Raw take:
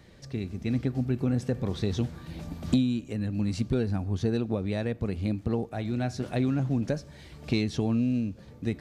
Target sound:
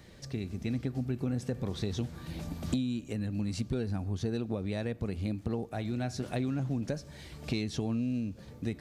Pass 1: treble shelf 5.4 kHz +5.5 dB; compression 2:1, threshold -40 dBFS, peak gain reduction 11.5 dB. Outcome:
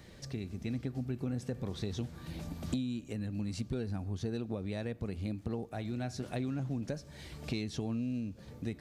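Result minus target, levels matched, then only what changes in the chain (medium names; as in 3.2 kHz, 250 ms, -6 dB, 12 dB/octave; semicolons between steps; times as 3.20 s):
compression: peak gain reduction +3.5 dB
change: compression 2:1, threshold -33 dBFS, peak gain reduction 8 dB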